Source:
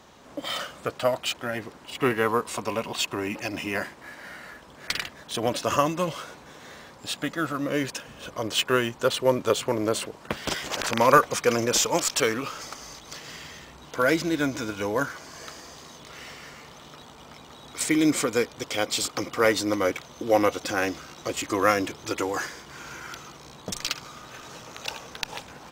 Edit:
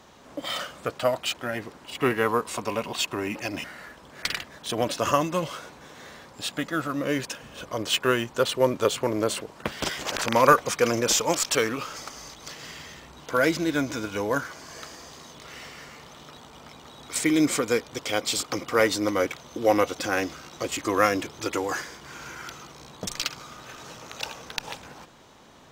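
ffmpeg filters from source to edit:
-filter_complex "[0:a]asplit=2[s0][s1];[s0]atrim=end=3.642[s2];[s1]atrim=start=4.288[s3];[s2][s3]acrossfade=d=0.004:c1=hsin:c2=hsin"

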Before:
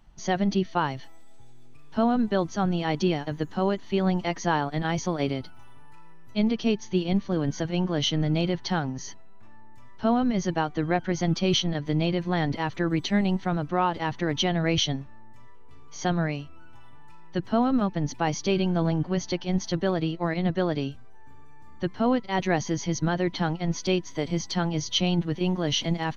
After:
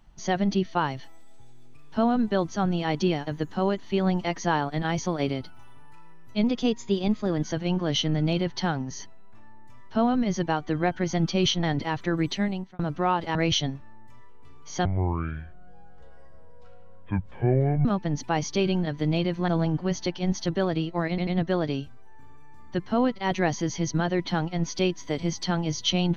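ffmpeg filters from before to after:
-filter_complex "[0:a]asplit=12[s0][s1][s2][s3][s4][s5][s6][s7][s8][s9][s10][s11];[s0]atrim=end=6.444[s12];[s1]atrim=start=6.44:end=7.51,asetpts=PTS-STARTPTS,asetrate=47628,aresample=44100[s13];[s2]atrim=start=7.506:end=11.712[s14];[s3]atrim=start=12.358:end=13.52,asetpts=PTS-STARTPTS,afade=t=out:st=0.662:d=0.5[s15];[s4]atrim=start=13.52:end=14.082,asetpts=PTS-STARTPTS,afade=t=in:d=0.004:c=hsin[s16];[s5]atrim=start=14.608:end=16.114[s17];[s6]atrim=start=16.11:end=17.76,asetpts=PTS-STARTPTS,asetrate=24255,aresample=44100[s18];[s7]atrim=start=17.756:end=18.742[s19];[s8]atrim=start=11.708:end=12.362[s20];[s9]atrim=start=18.738:end=20.442[s21];[s10]atrim=start=20.348:end=20.442[s22];[s11]atrim=start=20.348[s23];[s12][s13]acrossfade=d=0.004:c1=hsin:c2=hsin[s24];[s24][s14]acrossfade=d=0.004:c1=hsin:c2=hsin[s25];[s15][s16]concat=n=2:v=0:a=1[s26];[s25][s26]acrossfade=d=0.004:c1=hsin:c2=hsin[s27];[s27][s17]acrossfade=d=0.004:c1=hsin:c2=hsin[s28];[s28][s18]acrossfade=d=0.004:c1=hsin:c2=hsin[s29];[s29][s19]acrossfade=d=0.004:c1=hsin:c2=hsin[s30];[s30][s20]acrossfade=d=0.004:c1=hsin:c2=hsin[s31];[s31][s21]acrossfade=d=0.004:c1=hsin:c2=hsin[s32];[s32][s22]acrossfade=d=0.004:c1=hsin:c2=hsin[s33];[s33][s23]acrossfade=d=0.004:c1=hsin:c2=hsin"

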